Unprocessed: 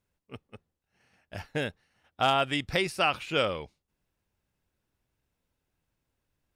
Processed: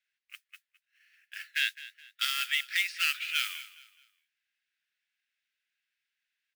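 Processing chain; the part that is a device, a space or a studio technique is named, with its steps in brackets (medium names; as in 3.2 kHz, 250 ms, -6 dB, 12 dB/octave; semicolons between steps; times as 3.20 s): carbon microphone (band-pass 490–3600 Hz; saturation -22.5 dBFS, distortion -11 dB; modulation noise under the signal 17 dB); steep high-pass 1.6 kHz 48 dB/octave; 1.55–2.25 s: dynamic bell 3.3 kHz, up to +8 dB, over -54 dBFS, Q 0.82; feedback delay 210 ms, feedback 35%, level -17 dB; trim +6 dB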